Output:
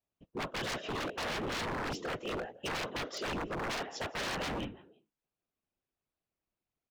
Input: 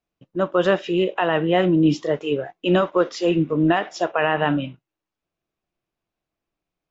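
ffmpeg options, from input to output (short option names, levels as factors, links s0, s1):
-filter_complex "[0:a]afftfilt=real='hypot(re,im)*cos(2*PI*random(0))':imag='hypot(re,im)*sin(2*PI*random(1))':win_size=512:overlap=0.75,asplit=3[s0][s1][s2];[s1]adelay=168,afreqshift=59,volume=0.075[s3];[s2]adelay=336,afreqshift=118,volume=0.0269[s4];[s0][s3][s4]amix=inputs=3:normalize=0,aeval=exprs='0.0376*(abs(mod(val(0)/0.0376+3,4)-2)-1)':c=same,volume=0.75"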